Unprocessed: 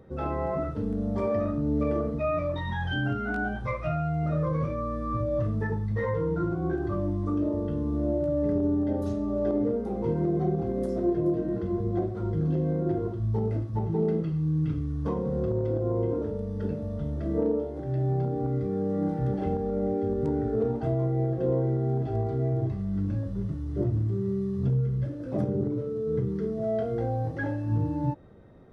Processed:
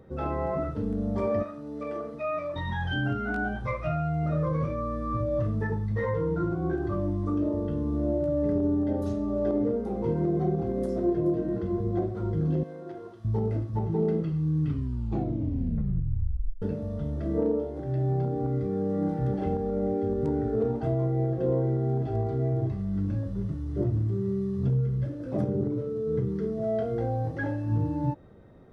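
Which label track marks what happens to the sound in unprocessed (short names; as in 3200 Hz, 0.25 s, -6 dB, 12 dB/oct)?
1.420000	2.550000	HPF 1200 Hz -> 550 Hz 6 dB/oct
12.630000	13.250000	HPF 1400 Hz 6 dB/oct
14.610000	14.610000	tape stop 2.01 s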